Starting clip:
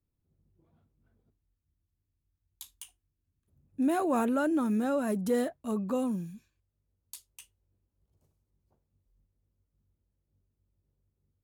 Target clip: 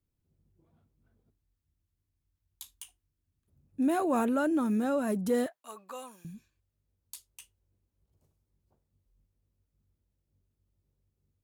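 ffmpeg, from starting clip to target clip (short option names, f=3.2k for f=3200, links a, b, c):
-filter_complex "[0:a]asettb=1/sr,asplit=3[a][b][c];[a]atrim=end=5.464[d];[b]atrim=start=5.46:end=6.25,asetpts=PTS-STARTPTS,afade=t=in:d=0.004:c=qsin,afade=t=out:st=0.786:d=0.004:c=qsin,highpass=1k[e];[c]atrim=start=6.246[f];[d][e]acrossfade=d=0.004:c1=hsin:c2=qsin[g];[g][f]acrossfade=d=0.004:c1=qsin:c2=hsin"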